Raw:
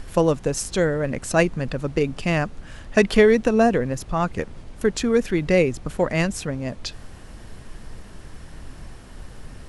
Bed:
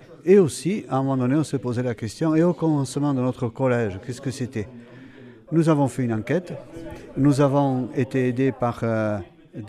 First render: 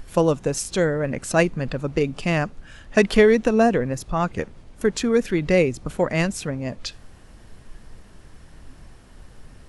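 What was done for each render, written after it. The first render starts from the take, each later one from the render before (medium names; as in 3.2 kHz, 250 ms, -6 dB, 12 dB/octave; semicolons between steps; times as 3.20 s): noise print and reduce 6 dB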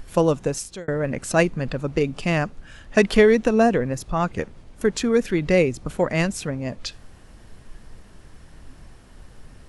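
0.46–0.88 s: fade out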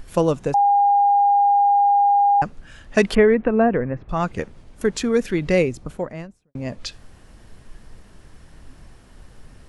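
0.54–2.42 s: bleep 809 Hz -12.5 dBFS; 3.15–4.09 s: low-pass 2.2 kHz 24 dB/octave; 5.54–6.55 s: studio fade out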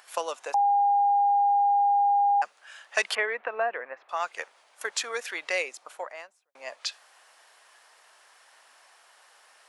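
high-pass 710 Hz 24 dB/octave; dynamic bell 900 Hz, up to -5 dB, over -31 dBFS, Q 0.73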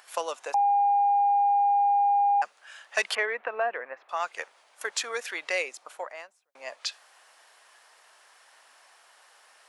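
saturation -10.5 dBFS, distortion -34 dB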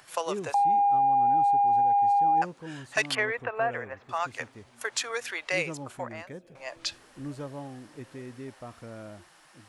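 add bed -20 dB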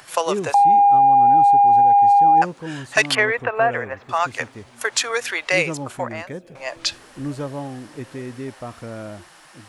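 trim +9.5 dB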